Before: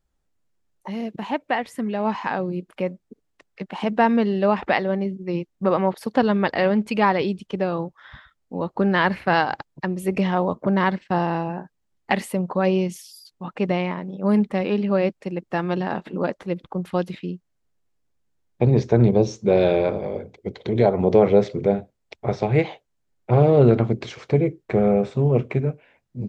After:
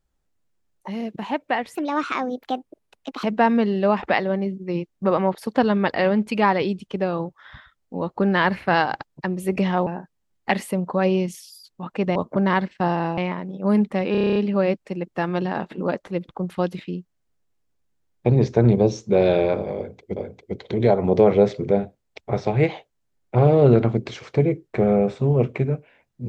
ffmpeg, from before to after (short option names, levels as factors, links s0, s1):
-filter_complex "[0:a]asplit=15[s0][s1][s2][s3][s4][s5][s6][s7][s8][s9][s10][s11][s12][s13][s14];[s0]atrim=end=1.754[s15];[s1]atrim=start=1.75:end=3.83,asetpts=PTS-STARTPTS,asetrate=61740,aresample=44100,atrim=end_sample=65520,asetpts=PTS-STARTPTS[s16];[s2]atrim=start=3.826:end=10.462[s17];[s3]atrim=start=11.478:end=13.772[s18];[s4]atrim=start=10.458:end=11.482[s19];[s5]atrim=start=13.768:end=14.742[s20];[s6]atrim=start=14.708:end=14.742[s21];[s7]atrim=start=14.708:end=14.742[s22];[s8]atrim=start=14.708:end=14.742[s23];[s9]atrim=start=14.708:end=14.742[s24];[s10]atrim=start=14.708:end=14.742[s25];[s11]atrim=start=14.708:end=14.742[s26];[s12]atrim=start=14.708:end=14.742[s27];[s13]atrim=start=14.708:end=20.522[s28];[s14]atrim=start=20.118[s29];[s15][s16]acrossfade=d=0.004:c1=hsin:c2=hsin[s30];[s30][s17]acrossfade=d=0.004:c1=hsin:c2=hsin[s31];[s31][s18]acrossfade=d=0.004:c1=hsin:c2=hsin[s32];[s32][s19]acrossfade=d=0.004:c1=hsin:c2=hsin[s33];[s33][s20]acrossfade=d=0.004:c1=hsin:c2=hsin[s34];[s34][s21]acrossfade=d=0.004:c1=hsin:c2=hsin[s35];[s35][s22]acrossfade=d=0.004:c1=hsin:c2=hsin[s36];[s36][s23]acrossfade=d=0.004:c1=hsin:c2=hsin[s37];[s37][s24]acrossfade=d=0.004:c1=hsin:c2=hsin[s38];[s38][s25]acrossfade=d=0.004:c1=hsin:c2=hsin[s39];[s39][s26]acrossfade=d=0.004:c1=hsin:c2=hsin[s40];[s40][s27]acrossfade=d=0.004:c1=hsin:c2=hsin[s41];[s41][s28]acrossfade=d=0.004:c1=hsin:c2=hsin[s42];[s42][s29]acrossfade=d=0.004:c1=hsin:c2=hsin"